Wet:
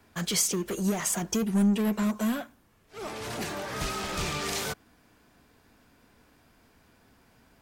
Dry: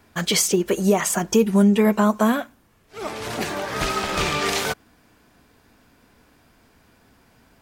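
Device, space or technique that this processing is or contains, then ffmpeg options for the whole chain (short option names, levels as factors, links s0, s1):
one-band saturation: -filter_complex "[0:a]acrossover=split=220|4700[s0][s1][s2];[s1]asoftclip=type=tanh:threshold=0.0447[s3];[s0][s3][s2]amix=inputs=3:normalize=0,volume=0.596"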